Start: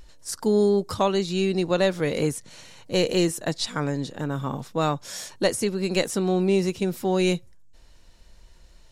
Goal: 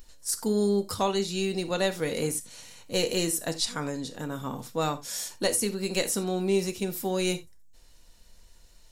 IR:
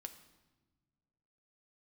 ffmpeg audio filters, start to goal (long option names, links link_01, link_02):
-filter_complex "[0:a]aemphasis=mode=production:type=50kf[link_01];[1:a]atrim=start_sample=2205,atrim=end_sample=3969[link_02];[link_01][link_02]afir=irnorm=-1:irlink=0"